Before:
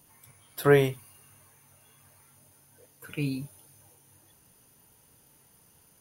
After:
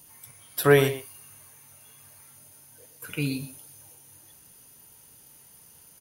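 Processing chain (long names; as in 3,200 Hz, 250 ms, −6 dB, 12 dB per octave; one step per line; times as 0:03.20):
high-shelf EQ 2,700 Hz +7.5 dB
far-end echo of a speakerphone 120 ms, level −10 dB
level +1.5 dB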